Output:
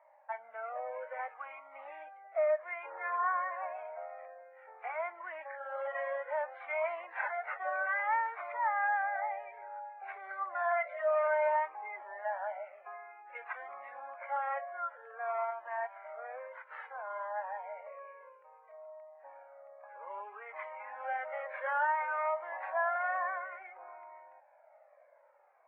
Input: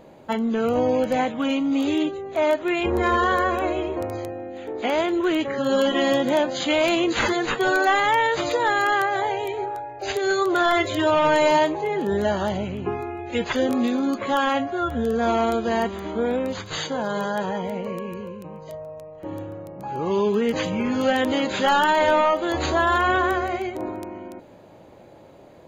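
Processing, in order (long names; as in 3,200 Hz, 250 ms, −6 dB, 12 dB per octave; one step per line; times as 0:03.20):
Chebyshev band-pass filter 590–2,200 Hz, order 4
flanger whose copies keep moving one way falling 0.58 Hz
level −6.5 dB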